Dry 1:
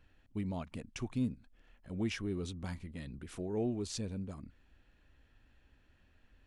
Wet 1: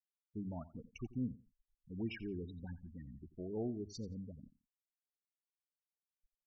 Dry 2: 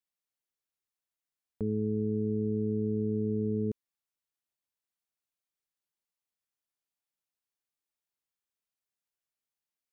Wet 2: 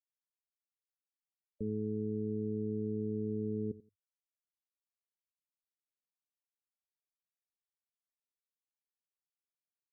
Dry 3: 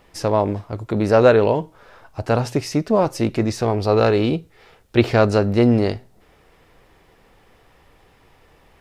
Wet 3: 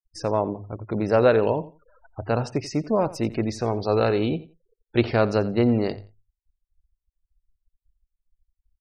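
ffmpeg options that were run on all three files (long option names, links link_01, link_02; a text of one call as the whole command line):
ffmpeg -i in.wav -af "bandreject=frequency=50:width_type=h:width=6,bandreject=frequency=100:width_type=h:width=6,afftfilt=real='re*gte(hypot(re,im),0.02)':imag='im*gte(hypot(re,im),0.02)':win_size=1024:overlap=0.75,aecho=1:1:87|174:0.133|0.0267,volume=-5dB" out.wav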